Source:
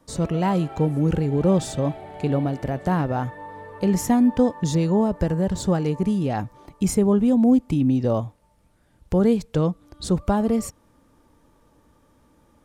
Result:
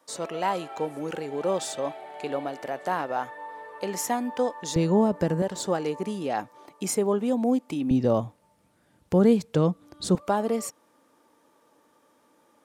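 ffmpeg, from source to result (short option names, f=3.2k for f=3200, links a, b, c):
-af "asetnsamples=n=441:p=0,asendcmd='4.76 highpass f 180;5.42 highpass f 380;7.91 highpass f 140;10.15 highpass f 360',highpass=540"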